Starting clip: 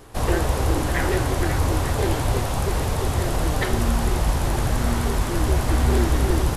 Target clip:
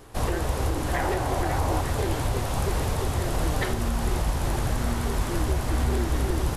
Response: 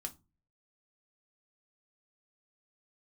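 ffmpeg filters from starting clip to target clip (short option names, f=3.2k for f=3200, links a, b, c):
-filter_complex "[0:a]asettb=1/sr,asplit=3[a][b][c];[a]atrim=end=0.934[d];[b]atrim=start=0.93:end=1.81,asetpts=PTS-STARTPTS,afade=t=in:d=0.004:c=qsin,afade=t=out:st=0.876:d=0.004:c=qsin,equalizer=f=760:w=1.5:g=8[e];[c]atrim=start=1.806[f];[d][e]acrossfade=d=0.004:c1=hsin:c2=qsin[g];[g][f]acrossfade=d=0.004:c1=qsin:c2=hsin,alimiter=limit=-12.5dB:level=0:latency=1:release=294,volume=-2.5dB"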